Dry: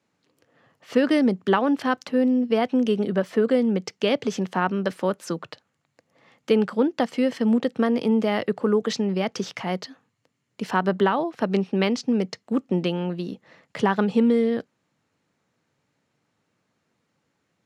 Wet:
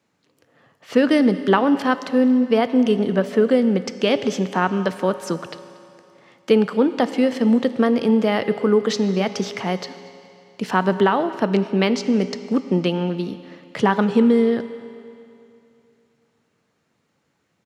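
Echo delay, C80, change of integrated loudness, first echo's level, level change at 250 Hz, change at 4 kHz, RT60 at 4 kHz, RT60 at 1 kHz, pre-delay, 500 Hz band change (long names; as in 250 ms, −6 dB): 233 ms, 12.5 dB, +4.0 dB, −23.0 dB, +4.0 dB, +4.0 dB, 2.5 s, 2.7 s, 7 ms, +4.0 dB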